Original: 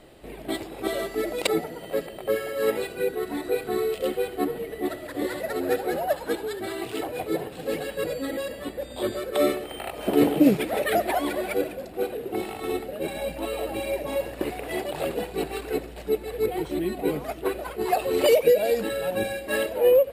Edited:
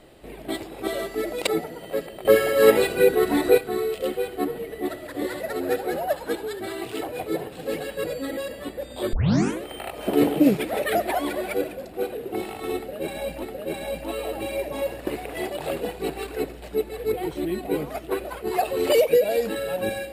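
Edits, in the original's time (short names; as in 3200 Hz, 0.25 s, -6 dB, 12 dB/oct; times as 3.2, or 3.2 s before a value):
2.25–3.58 gain +9 dB
9.13 tape start 0.50 s
12.77–13.43 loop, 2 plays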